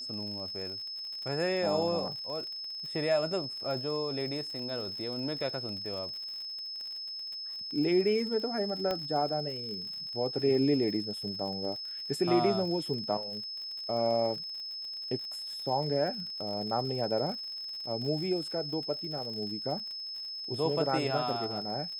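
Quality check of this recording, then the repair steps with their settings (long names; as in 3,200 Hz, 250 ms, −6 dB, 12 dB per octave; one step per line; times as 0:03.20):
surface crackle 59 per second −39 dBFS
whistle 5,200 Hz −37 dBFS
0:08.91: click −19 dBFS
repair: click removal
notch filter 5,200 Hz, Q 30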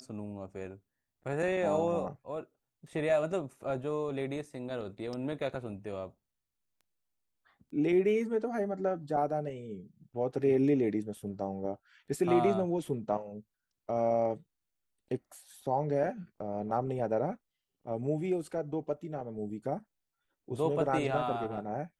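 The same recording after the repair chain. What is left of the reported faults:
0:08.91: click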